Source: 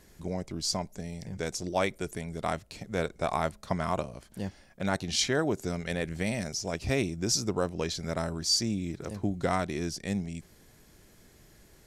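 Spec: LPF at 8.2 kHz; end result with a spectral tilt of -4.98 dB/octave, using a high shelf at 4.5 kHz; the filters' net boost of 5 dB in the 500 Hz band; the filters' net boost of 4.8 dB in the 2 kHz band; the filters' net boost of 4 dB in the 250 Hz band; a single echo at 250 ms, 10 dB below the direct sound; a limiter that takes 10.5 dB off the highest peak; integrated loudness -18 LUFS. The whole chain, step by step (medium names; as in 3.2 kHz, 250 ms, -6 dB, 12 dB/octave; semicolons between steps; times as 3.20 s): low-pass 8.2 kHz; peaking EQ 250 Hz +4 dB; peaking EQ 500 Hz +5 dB; peaking EQ 2 kHz +7 dB; treble shelf 4.5 kHz -7.5 dB; peak limiter -19.5 dBFS; delay 250 ms -10 dB; trim +13.5 dB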